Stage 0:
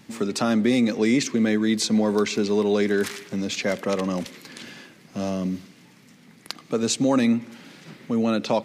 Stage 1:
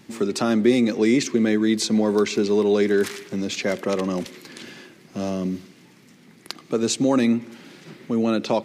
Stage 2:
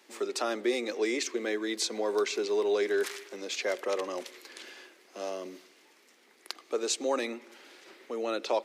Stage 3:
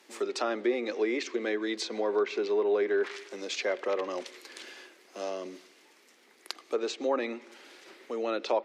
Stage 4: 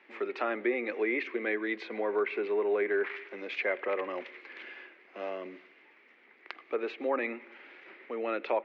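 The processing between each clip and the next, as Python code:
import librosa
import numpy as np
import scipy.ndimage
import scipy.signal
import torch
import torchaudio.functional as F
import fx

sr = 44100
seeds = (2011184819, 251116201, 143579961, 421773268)

y1 = fx.peak_eq(x, sr, hz=360.0, db=7.5, octaves=0.31)
y2 = scipy.signal.sosfilt(scipy.signal.butter(4, 390.0, 'highpass', fs=sr, output='sos'), y1)
y2 = y2 * 10.0 ** (-5.5 / 20.0)
y3 = fx.env_lowpass_down(y2, sr, base_hz=2000.0, full_db=-24.5)
y3 = y3 * 10.0 ** (1.0 / 20.0)
y4 = fx.ladder_lowpass(y3, sr, hz=2600.0, resonance_pct=50)
y4 = y4 * 10.0 ** (7.0 / 20.0)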